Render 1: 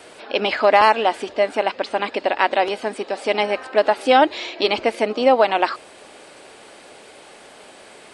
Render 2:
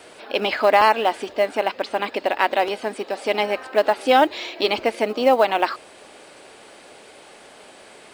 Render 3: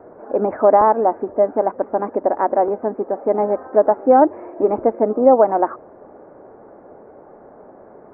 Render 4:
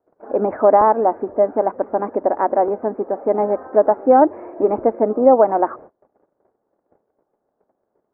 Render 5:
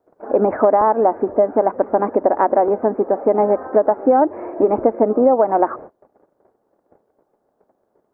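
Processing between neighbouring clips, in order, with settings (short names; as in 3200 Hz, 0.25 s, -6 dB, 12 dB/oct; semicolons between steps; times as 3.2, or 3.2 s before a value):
short-mantissa float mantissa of 4-bit; gain -1.5 dB
Gaussian blur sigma 8.6 samples; gain +7 dB
gate -38 dBFS, range -30 dB
compressor, threshold -16 dBFS, peak gain reduction 9 dB; gain +5.5 dB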